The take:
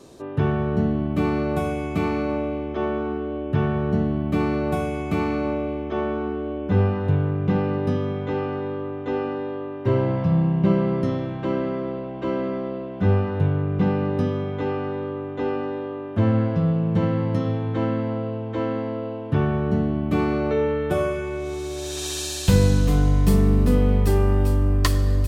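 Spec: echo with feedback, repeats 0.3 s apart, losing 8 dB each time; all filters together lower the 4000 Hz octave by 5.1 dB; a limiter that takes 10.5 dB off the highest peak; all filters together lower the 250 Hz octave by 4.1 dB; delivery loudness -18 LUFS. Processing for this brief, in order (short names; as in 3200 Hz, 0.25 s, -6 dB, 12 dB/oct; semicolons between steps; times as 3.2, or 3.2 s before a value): bell 250 Hz -6 dB; bell 4000 Hz -6.5 dB; limiter -17 dBFS; feedback echo 0.3 s, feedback 40%, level -8 dB; gain +8.5 dB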